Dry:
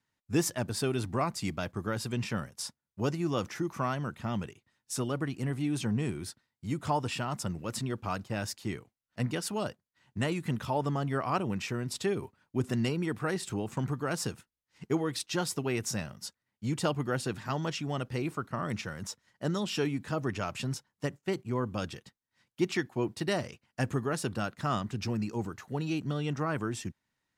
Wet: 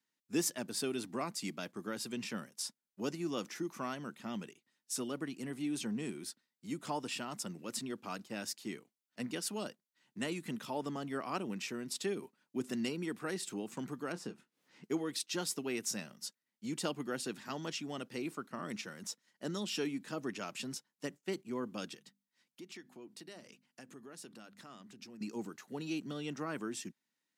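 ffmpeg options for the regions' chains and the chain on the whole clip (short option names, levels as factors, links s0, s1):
-filter_complex "[0:a]asettb=1/sr,asplit=3[s0][s1][s2];[s0]atrim=end=14.124[s3];[s1]atrim=start=14.12:end=14.84,asetpts=PTS-STARTPTS,afade=t=in:d=0.004:c=qsin,afade=t=out:st=0.716:d=0.004:c=qsin,lowpass=f=1300:p=1,acompressor=mode=upward:threshold=0.00631:ratio=2.5:attack=3.2:release=140:knee=2.83:detection=peak,asplit=2[s4][s5];[s5]adelay=28,volume=0.237[s6];[s4][s6]amix=inputs=2:normalize=0,atrim=end_sample=31752[s7];[s2]atrim=start=14.836[s8];[s3][s7]acrossfade=d=0.004:c1=hsin:c2=qsin[s9];[s9][s8]acrossfade=d=0.004:c1=qsin:c2=hsin,asettb=1/sr,asplit=3[s10][s11][s12];[s10]atrim=end=21.944[s13];[s11]atrim=start=21.94:end=25.21,asetpts=PTS-STARTPTS,afade=t=in:d=0.004:c=qsin,afade=t=out:st=3.266:d=0.004:c=qsin,bandreject=f=50:t=h:w=6,bandreject=f=100:t=h:w=6,bandreject=f=150:t=h:w=6,bandreject=f=200:t=h:w=6,bandreject=f=250:t=h:w=6,acompressor=threshold=0.00501:ratio=3:attack=3.2:release=140:knee=1:detection=peak[s14];[s12]atrim=start=25.206[s15];[s13][s14]acrossfade=d=0.004:c1=hsin:c2=qsin[s16];[s16][s15]acrossfade=d=0.004:c1=qsin:c2=hsin,highpass=f=210:w=0.5412,highpass=f=210:w=1.3066,equalizer=f=860:w=0.46:g=-8,volume=0.891"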